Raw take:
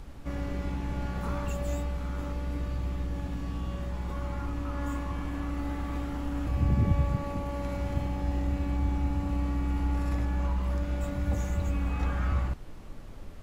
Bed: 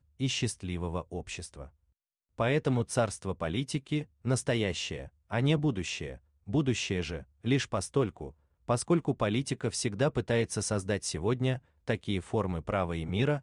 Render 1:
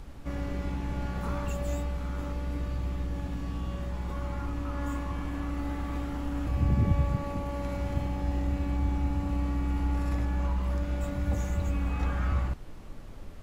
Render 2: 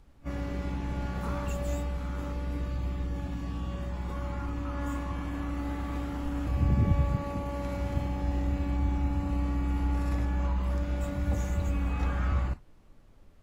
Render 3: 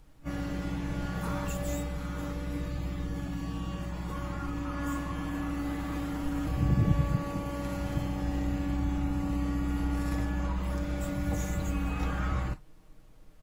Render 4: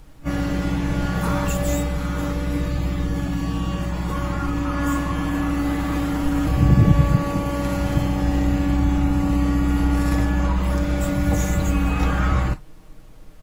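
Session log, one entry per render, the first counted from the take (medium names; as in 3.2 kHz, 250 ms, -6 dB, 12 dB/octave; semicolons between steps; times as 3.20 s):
no audible change
noise print and reduce 13 dB
treble shelf 6.2 kHz +7 dB; comb 6.4 ms, depth 51%
trim +11 dB; peak limiter -3 dBFS, peak gain reduction 1.5 dB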